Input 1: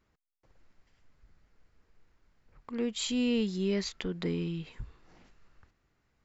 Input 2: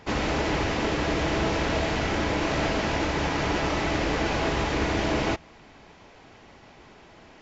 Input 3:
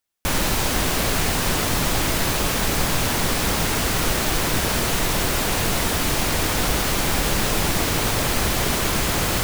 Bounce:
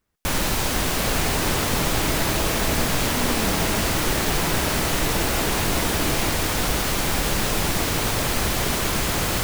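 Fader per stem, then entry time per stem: −3.5, −4.0, −1.5 decibels; 0.00, 0.95, 0.00 seconds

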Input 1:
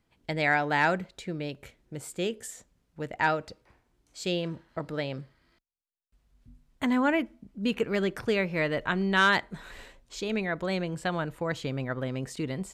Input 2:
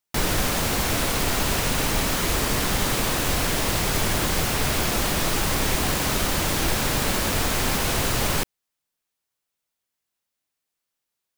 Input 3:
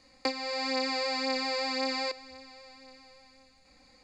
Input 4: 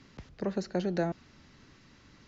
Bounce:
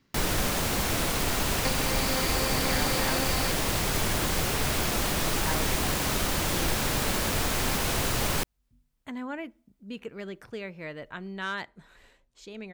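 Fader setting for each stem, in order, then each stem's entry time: −11.0, −4.0, −2.5, −11.0 decibels; 2.25, 0.00, 1.40, 0.00 seconds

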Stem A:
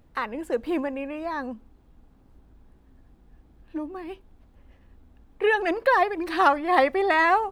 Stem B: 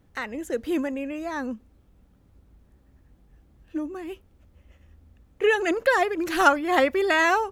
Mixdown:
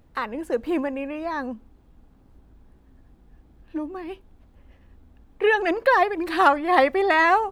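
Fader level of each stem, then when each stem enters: +1.0, −16.0 decibels; 0.00, 0.00 seconds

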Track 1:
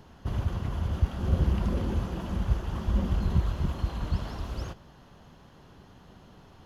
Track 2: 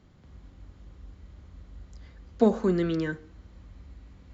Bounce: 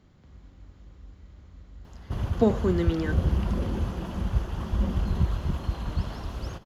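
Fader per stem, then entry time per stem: +0.5, −0.5 decibels; 1.85, 0.00 seconds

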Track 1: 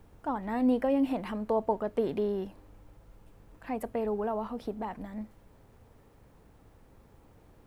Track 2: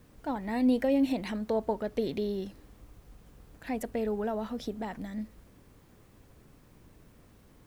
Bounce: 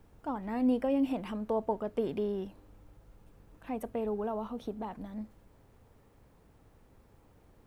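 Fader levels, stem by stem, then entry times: −3.5, −15.5 decibels; 0.00, 0.00 seconds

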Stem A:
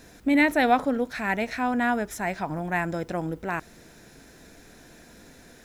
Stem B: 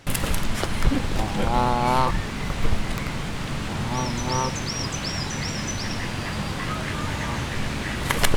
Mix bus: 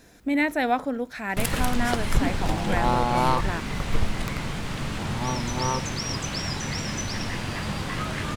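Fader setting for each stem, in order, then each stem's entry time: −3.0, −1.5 decibels; 0.00, 1.30 seconds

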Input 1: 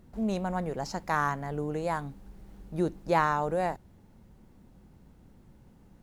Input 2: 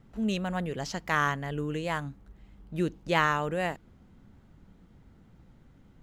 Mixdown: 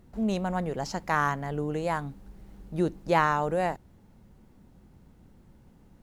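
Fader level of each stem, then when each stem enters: 0.0, −11.5 decibels; 0.00, 0.00 seconds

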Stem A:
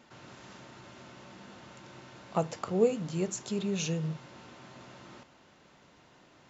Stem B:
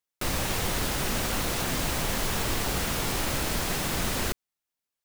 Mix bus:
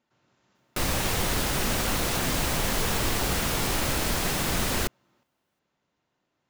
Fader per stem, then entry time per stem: −18.5, +2.0 decibels; 0.00, 0.55 seconds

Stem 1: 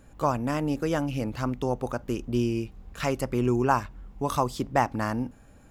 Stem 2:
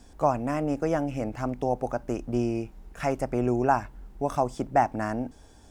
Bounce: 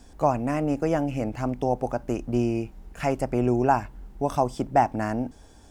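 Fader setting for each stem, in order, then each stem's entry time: −13.5, +1.5 decibels; 0.00, 0.00 seconds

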